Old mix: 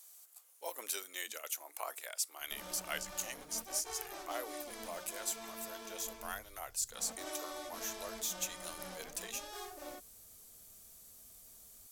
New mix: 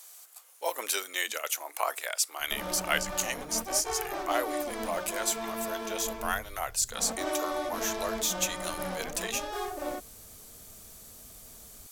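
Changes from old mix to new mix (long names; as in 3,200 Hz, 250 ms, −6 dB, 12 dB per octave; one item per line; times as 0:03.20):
speech: add spectral tilt +2.5 dB per octave
master: remove first-order pre-emphasis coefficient 0.8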